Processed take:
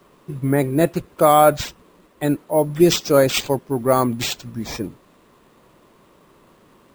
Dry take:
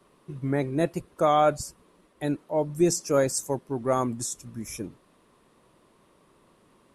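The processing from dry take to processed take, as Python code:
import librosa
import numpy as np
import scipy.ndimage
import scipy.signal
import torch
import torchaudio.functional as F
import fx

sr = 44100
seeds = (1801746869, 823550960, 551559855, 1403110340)

y = np.repeat(x[::4], 4)[:len(x)]
y = y * librosa.db_to_amplitude(8.0)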